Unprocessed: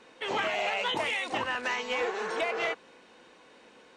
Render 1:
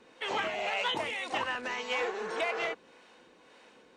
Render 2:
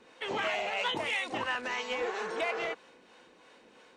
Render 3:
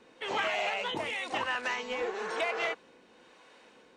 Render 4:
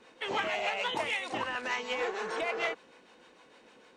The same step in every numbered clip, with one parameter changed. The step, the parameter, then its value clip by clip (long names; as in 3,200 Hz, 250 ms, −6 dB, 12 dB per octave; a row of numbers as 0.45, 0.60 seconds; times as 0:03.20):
two-band tremolo in antiphase, speed: 1.8, 3, 1, 6.6 Hertz